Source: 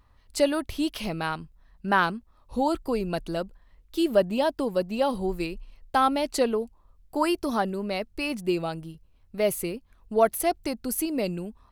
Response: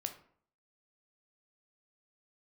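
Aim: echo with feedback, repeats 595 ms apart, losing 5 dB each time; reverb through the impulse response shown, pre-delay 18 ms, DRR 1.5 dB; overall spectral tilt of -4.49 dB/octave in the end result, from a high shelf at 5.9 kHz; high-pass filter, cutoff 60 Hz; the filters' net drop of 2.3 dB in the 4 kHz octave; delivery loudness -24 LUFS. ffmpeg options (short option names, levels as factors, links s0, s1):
-filter_complex "[0:a]highpass=60,equalizer=f=4000:t=o:g=-5,highshelf=f=5900:g=5.5,aecho=1:1:595|1190|1785|2380|2975|3570|4165:0.562|0.315|0.176|0.0988|0.0553|0.031|0.0173,asplit=2[s0][s1];[1:a]atrim=start_sample=2205,adelay=18[s2];[s1][s2]afir=irnorm=-1:irlink=0,volume=0.944[s3];[s0][s3]amix=inputs=2:normalize=0,volume=0.944"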